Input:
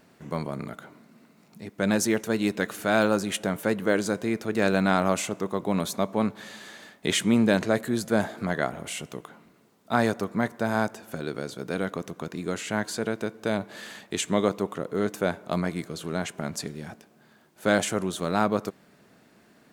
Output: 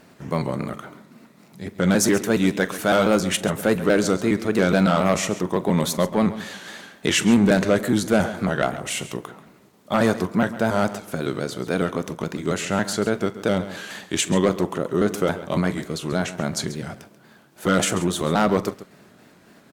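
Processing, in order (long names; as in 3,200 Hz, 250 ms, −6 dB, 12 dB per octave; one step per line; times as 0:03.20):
pitch shifter gated in a rhythm −1.5 semitones, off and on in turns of 139 ms
harmonic generator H 5 −12 dB, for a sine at −5.5 dBFS
multi-tap delay 43/136 ms −18/−14.5 dB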